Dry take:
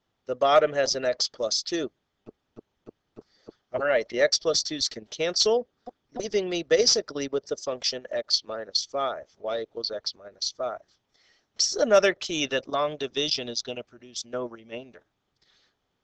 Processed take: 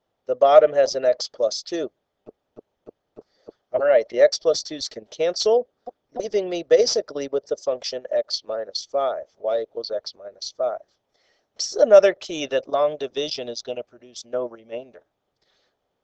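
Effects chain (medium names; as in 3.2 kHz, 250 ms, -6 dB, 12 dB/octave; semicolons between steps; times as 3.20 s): peaking EQ 580 Hz +11.5 dB 1.2 oct; trim -3.5 dB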